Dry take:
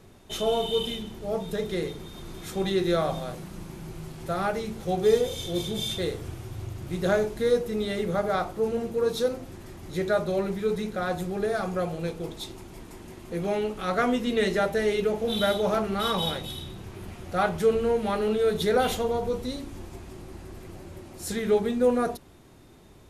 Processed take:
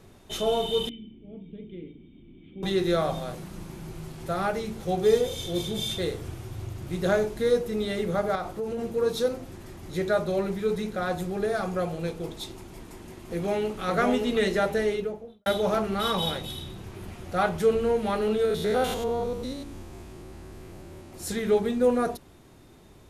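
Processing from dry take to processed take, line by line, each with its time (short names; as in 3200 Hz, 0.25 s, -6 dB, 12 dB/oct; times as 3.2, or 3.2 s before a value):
0.89–2.63 vocal tract filter i
8.35–8.79 compressor, threshold -27 dBFS
12.72–13.81 echo throw 0.57 s, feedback 35%, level -3 dB
14.71–15.46 studio fade out
18.45–21.13 stepped spectrum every 0.1 s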